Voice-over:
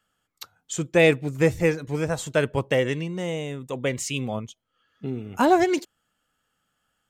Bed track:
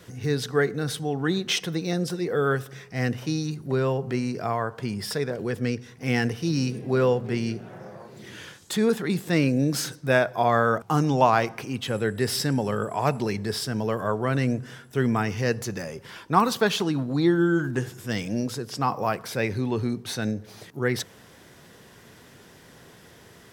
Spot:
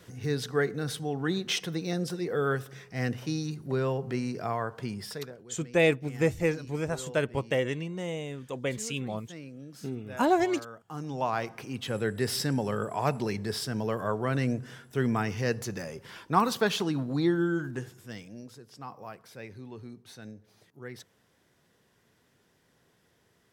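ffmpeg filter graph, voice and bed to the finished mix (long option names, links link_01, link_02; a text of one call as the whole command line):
ffmpeg -i stem1.wav -i stem2.wav -filter_complex "[0:a]adelay=4800,volume=-5.5dB[link_01];[1:a]volume=14dB,afade=type=out:start_time=4.82:duration=0.62:silence=0.125893,afade=type=in:start_time=10.79:duration=1.21:silence=0.11885,afade=type=out:start_time=17.14:duration=1.18:silence=0.211349[link_02];[link_01][link_02]amix=inputs=2:normalize=0" out.wav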